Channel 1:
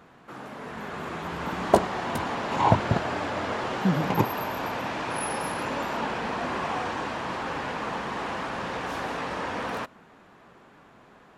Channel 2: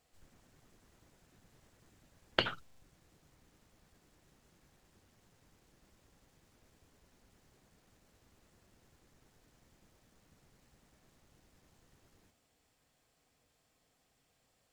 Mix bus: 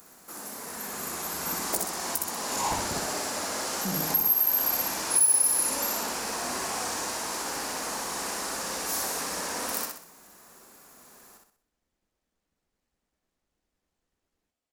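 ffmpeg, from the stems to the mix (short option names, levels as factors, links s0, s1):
-filter_complex "[0:a]aemphasis=mode=production:type=50fm,asoftclip=type=tanh:threshold=0.1,aexciter=amount=5.6:drive=5.4:freq=4600,volume=0.562,asplit=2[s0][s1];[s1]volume=0.668[s2];[1:a]adelay=2200,volume=0.211[s3];[s2]aecho=0:1:63|126|189|252|315|378:1|0.41|0.168|0.0689|0.0283|0.0116[s4];[s0][s3][s4]amix=inputs=3:normalize=0,equalizer=f=120:w=2.5:g=-13.5,alimiter=limit=0.211:level=0:latency=1:release=352"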